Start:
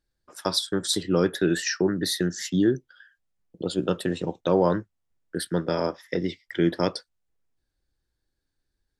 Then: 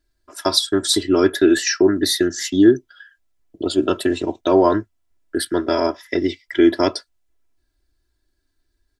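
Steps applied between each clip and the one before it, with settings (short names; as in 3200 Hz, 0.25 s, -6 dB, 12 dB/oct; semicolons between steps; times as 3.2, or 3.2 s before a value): comb 3 ms, depth 97%; gain +4.5 dB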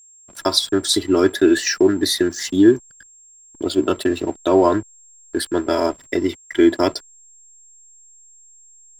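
backlash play -33 dBFS; whine 7500 Hz -46 dBFS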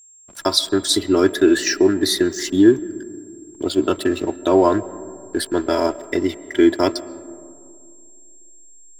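reverb RT60 2.4 s, pre-delay 95 ms, DRR 17.5 dB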